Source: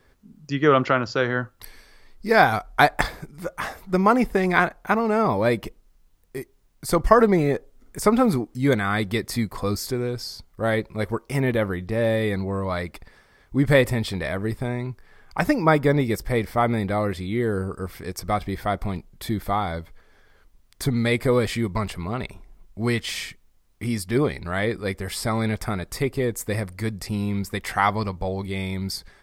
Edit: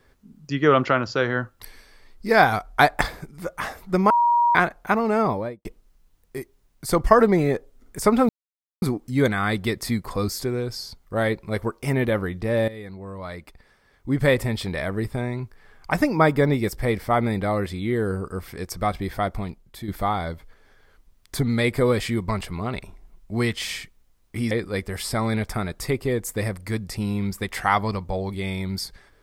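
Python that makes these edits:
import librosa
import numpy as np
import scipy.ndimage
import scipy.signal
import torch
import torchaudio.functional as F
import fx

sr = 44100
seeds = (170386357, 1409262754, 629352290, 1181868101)

y = fx.studio_fade_out(x, sr, start_s=5.19, length_s=0.46)
y = fx.edit(y, sr, fx.bleep(start_s=4.1, length_s=0.45, hz=951.0, db=-15.0),
    fx.insert_silence(at_s=8.29, length_s=0.53),
    fx.fade_in_from(start_s=12.15, length_s=2.13, floor_db=-15.5),
    fx.fade_out_to(start_s=18.69, length_s=0.66, floor_db=-9.0),
    fx.cut(start_s=23.98, length_s=0.65), tone=tone)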